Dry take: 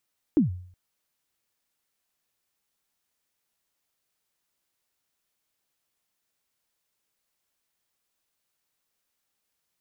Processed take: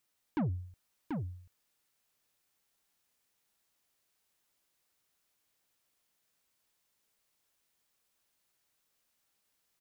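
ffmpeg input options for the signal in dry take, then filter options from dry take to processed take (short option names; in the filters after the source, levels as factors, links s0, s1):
-f lavfi -i "aevalsrc='0.211*pow(10,-3*t/0.56)*sin(2*PI*(340*0.13/log(90/340)*(exp(log(90/340)*min(t,0.13)/0.13)-1)+90*max(t-0.13,0)))':d=0.37:s=44100"
-af "asoftclip=type=tanh:threshold=0.0355,aecho=1:1:736:0.596"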